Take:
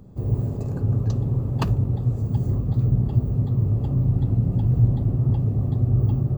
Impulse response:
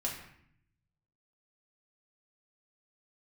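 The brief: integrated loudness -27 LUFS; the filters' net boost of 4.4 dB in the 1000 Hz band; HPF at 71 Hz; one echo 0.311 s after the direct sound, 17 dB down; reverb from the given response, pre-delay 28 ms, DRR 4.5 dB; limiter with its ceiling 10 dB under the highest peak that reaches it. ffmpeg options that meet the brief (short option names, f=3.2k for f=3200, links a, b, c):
-filter_complex "[0:a]highpass=71,equalizer=f=1k:t=o:g=5.5,alimiter=limit=-18.5dB:level=0:latency=1,aecho=1:1:311:0.141,asplit=2[a][b];[1:a]atrim=start_sample=2205,adelay=28[c];[b][c]afir=irnorm=-1:irlink=0,volume=-7.5dB[d];[a][d]amix=inputs=2:normalize=0,volume=-2.5dB"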